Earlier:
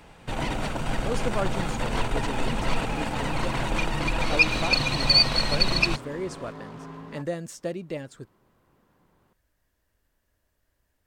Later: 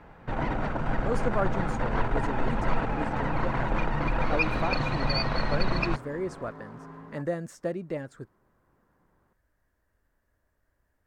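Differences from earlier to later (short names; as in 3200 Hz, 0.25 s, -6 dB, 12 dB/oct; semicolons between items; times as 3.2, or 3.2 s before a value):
first sound: add air absorption 140 m; second sound -4.5 dB; master: add resonant high shelf 2200 Hz -7.5 dB, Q 1.5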